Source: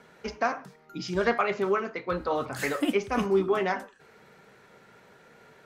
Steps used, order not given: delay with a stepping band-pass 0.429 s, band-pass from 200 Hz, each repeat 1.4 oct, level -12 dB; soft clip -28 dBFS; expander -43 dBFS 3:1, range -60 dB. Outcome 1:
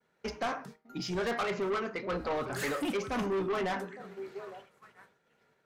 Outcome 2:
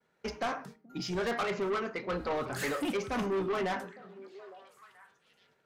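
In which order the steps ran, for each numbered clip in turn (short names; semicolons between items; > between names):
delay with a stepping band-pass > expander > soft clip; expander > soft clip > delay with a stepping band-pass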